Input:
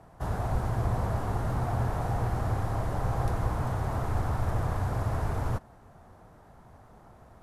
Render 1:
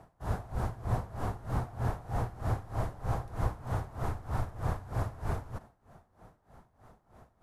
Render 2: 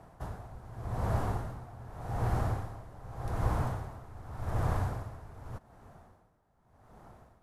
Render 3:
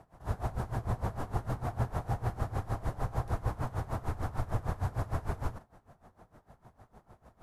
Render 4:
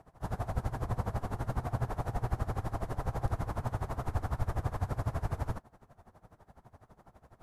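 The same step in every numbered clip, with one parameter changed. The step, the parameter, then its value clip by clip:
logarithmic tremolo, rate: 3.2 Hz, 0.85 Hz, 6.6 Hz, 12 Hz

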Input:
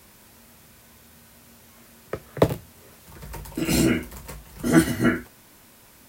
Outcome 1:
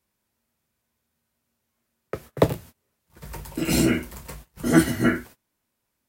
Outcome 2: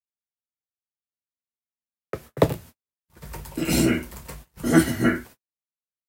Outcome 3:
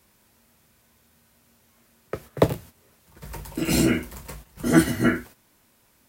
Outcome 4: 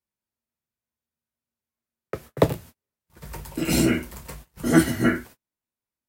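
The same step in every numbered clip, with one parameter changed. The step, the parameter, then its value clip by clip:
gate, range: -26 dB, -58 dB, -10 dB, -41 dB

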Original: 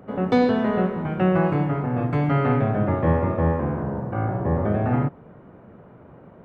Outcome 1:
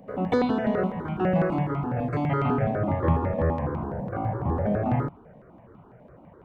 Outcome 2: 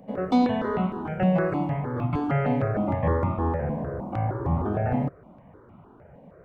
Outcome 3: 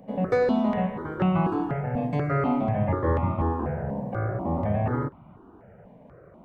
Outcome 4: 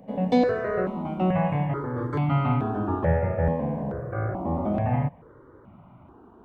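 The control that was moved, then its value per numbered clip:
stepped phaser, rate: 12 Hz, 6.5 Hz, 4.1 Hz, 2.3 Hz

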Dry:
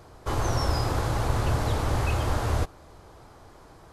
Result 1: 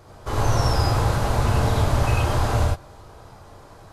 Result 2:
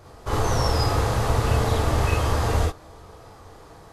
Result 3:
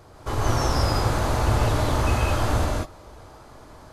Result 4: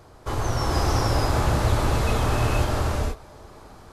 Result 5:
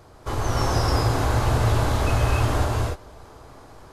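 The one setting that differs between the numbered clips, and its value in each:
gated-style reverb, gate: 120 ms, 80 ms, 220 ms, 510 ms, 320 ms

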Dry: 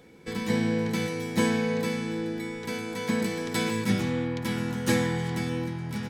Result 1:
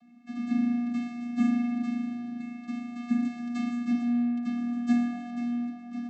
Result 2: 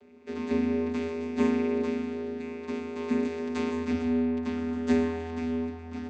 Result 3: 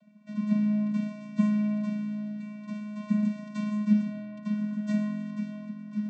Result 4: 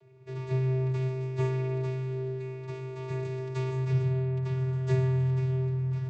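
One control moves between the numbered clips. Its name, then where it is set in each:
vocoder, frequency: 240 Hz, 82 Hz, 210 Hz, 130 Hz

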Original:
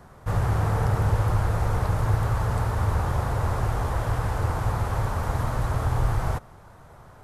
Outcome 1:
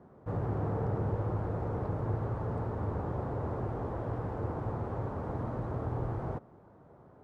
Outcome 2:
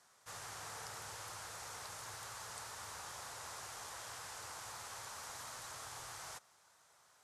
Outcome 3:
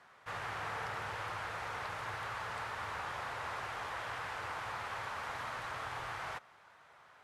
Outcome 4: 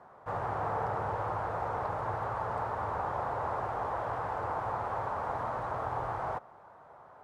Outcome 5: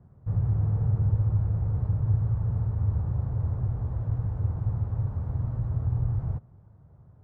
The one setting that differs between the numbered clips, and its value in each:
band-pass filter, frequency: 310 Hz, 6.6 kHz, 2.5 kHz, 820 Hz, 110 Hz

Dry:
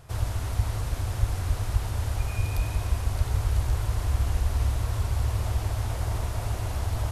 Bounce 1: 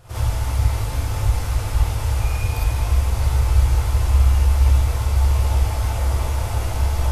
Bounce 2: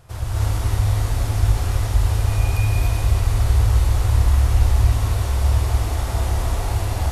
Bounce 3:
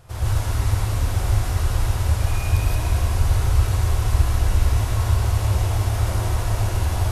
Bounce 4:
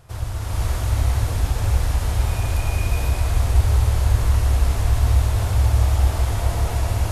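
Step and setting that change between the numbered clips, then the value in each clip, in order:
gated-style reverb, gate: 80 ms, 320 ms, 190 ms, 530 ms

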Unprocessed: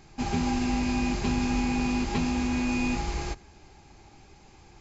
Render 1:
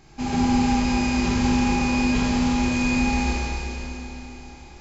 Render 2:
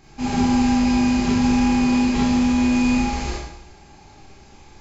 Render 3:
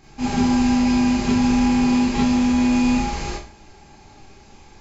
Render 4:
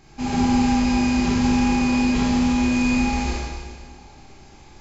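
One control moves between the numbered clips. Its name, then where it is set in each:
Schroeder reverb, RT60: 3.6 s, 0.77 s, 0.36 s, 1.7 s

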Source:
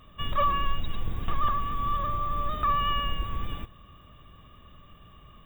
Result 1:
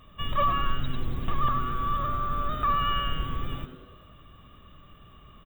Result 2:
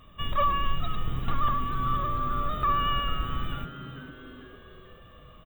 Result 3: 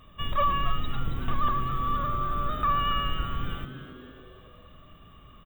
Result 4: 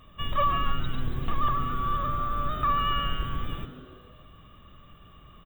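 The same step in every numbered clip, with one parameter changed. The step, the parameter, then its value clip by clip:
frequency-shifting echo, time: 95 ms, 444 ms, 276 ms, 142 ms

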